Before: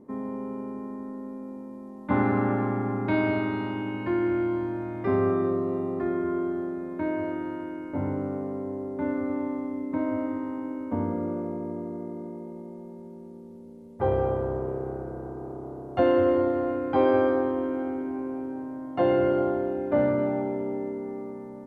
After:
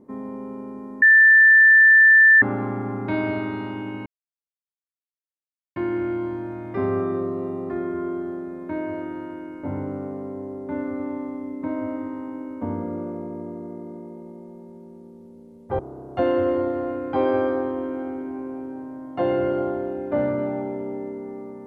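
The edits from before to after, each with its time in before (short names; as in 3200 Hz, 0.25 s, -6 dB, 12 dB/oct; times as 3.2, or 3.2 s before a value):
1.02–2.42 bleep 1770 Hz -9 dBFS
4.06 insert silence 1.70 s
14.09–15.59 cut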